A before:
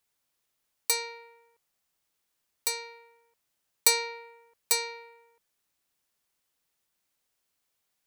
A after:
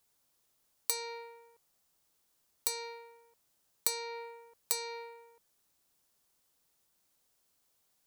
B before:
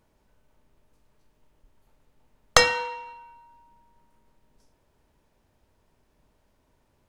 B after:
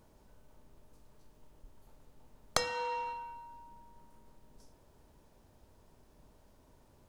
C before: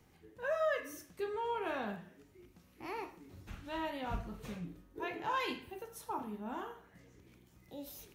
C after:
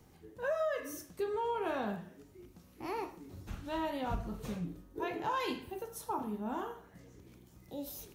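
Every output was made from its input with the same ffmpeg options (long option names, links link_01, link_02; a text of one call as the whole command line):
ffmpeg -i in.wav -af "equalizer=frequency=2200:width_type=o:width=1.4:gain=-6,acompressor=threshold=-35dB:ratio=6,volume=5dB" out.wav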